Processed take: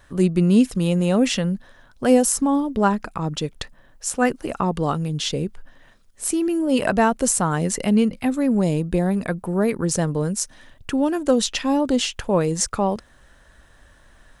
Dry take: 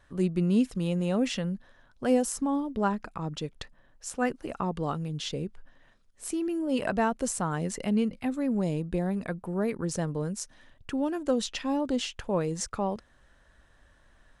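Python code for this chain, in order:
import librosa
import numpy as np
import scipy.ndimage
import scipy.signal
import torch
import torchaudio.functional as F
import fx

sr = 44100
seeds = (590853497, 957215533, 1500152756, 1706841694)

y = fx.high_shelf(x, sr, hz=8500.0, db=8.5)
y = F.gain(torch.from_numpy(y), 8.5).numpy()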